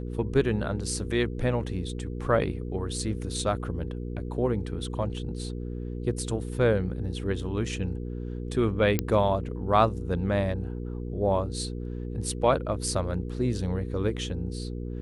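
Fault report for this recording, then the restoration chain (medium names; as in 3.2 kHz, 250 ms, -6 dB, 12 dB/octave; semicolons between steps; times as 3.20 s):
hum 60 Hz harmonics 8 -34 dBFS
8.99 s: pop -10 dBFS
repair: de-click; de-hum 60 Hz, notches 8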